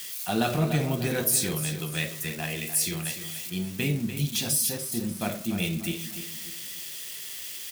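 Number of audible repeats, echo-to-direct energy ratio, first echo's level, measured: 3, -10.0 dB, -10.5 dB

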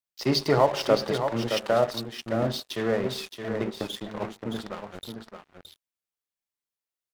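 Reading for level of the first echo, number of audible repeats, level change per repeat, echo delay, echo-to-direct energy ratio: -7.5 dB, 1, no steady repeat, 0.619 s, -7.5 dB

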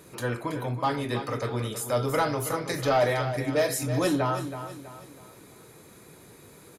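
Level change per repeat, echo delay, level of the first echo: -8.0 dB, 0.324 s, -10.5 dB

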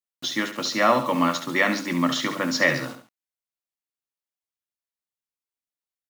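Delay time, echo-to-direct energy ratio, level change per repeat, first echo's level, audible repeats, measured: 69 ms, -9.0 dB, -7.0 dB, -10.0 dB, 2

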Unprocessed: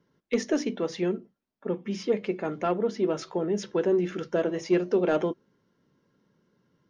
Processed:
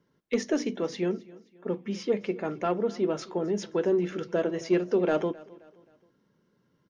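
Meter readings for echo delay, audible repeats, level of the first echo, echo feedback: 0.264 s, 2, -21.5 dB, 41%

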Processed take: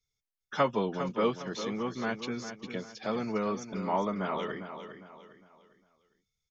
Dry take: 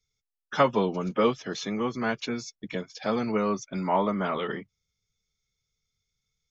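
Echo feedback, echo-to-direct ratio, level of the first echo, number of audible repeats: 36%, -9.5 dB, -10.0 dB, 3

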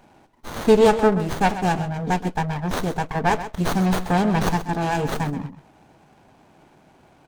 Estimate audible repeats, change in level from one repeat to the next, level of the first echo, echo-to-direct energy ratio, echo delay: 1, no steady repeat, -12.5 dB, -12.5 dB, 0.13 s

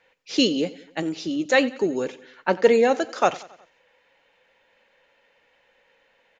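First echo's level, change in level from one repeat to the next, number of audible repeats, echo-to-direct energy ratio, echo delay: -20.0 dB, -5.5 dB, 3, -18.5 dB, 91 ms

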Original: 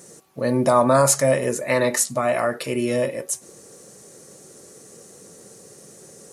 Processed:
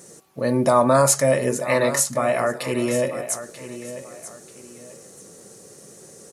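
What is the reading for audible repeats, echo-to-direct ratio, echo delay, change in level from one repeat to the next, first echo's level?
2, -12.5 dB, 0.938 s, -10.0 dB, -13.0 dB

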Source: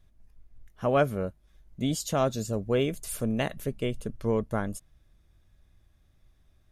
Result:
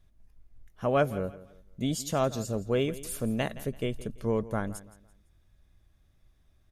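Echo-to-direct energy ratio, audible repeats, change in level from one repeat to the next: -16.5 dB, 2, -10.0 dB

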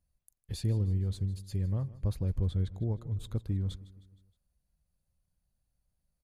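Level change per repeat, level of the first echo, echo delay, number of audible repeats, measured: -5.5 dB, -18.5 dB, 0.156 s, 3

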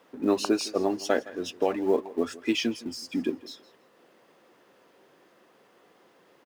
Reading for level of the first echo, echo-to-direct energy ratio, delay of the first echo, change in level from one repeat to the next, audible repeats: -19.5 dB, -19.5 dB, 0.163 s, -13.5 dB, 2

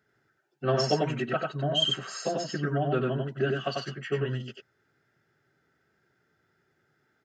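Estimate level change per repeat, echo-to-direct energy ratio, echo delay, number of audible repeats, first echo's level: no steady repeat, -3.0 dB, 94 ms, 1, -3.0 dB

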